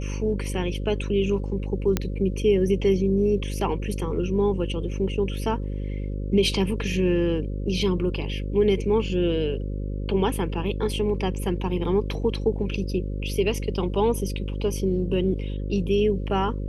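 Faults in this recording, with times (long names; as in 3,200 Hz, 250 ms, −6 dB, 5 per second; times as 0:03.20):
mains buzz 50 Hz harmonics 11 −29 dBFS
0:01.97: click −8 dBFS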